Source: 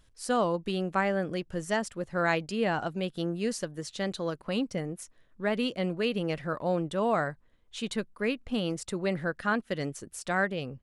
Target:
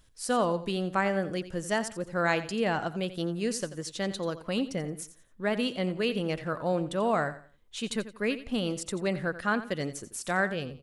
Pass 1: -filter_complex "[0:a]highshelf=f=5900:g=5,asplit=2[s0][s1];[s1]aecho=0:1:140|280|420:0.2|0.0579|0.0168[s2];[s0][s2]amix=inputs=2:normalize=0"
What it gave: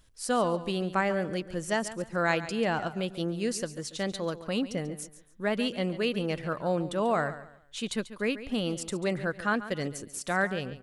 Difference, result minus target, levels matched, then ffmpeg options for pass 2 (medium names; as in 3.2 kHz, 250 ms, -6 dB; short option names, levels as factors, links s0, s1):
echo 53 ms late
-filter_complex "[0:a]highshelf=f=5900:g=5,asplit=2[s0][s1];[s1]aecho=0:1:87|174|261:0.2|0.0579|0.0168[s2];[s0][s2]amix=inputs=2:normalize=0"